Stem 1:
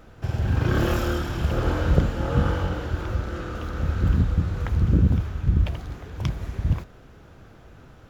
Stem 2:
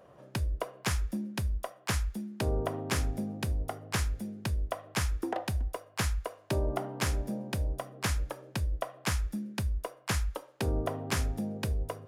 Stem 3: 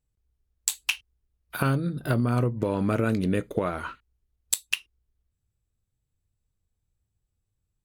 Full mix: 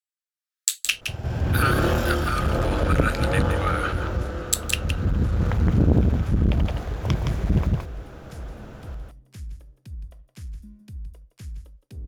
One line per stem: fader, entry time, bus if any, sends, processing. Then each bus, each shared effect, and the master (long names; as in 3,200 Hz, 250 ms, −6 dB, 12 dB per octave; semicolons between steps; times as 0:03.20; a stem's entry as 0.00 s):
−4.0 dB, 0.85 s, no send, echo send −3 dB, parametric band 600 Hz +4.5 dB 0.94 octaves; automatic ducking −12 dB, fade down 1.70 s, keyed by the third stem
−6.5 dB, 1.30 s, no send, echo send −12 dB, guitar amp tone stack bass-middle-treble 10-0-1; leveller curve on the samples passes 1
−5.0 dB, 0.00 s, no send, echo send −8 dB, automatic gain control gain up to 10 dB; Chebyshev high-pass with heavy ripple 1,200 Hz, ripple 3 dB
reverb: not used
echo: single-tap delay 167 ms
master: automatic gain control gain up to 8 dB; saturating transformer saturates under 310 Hz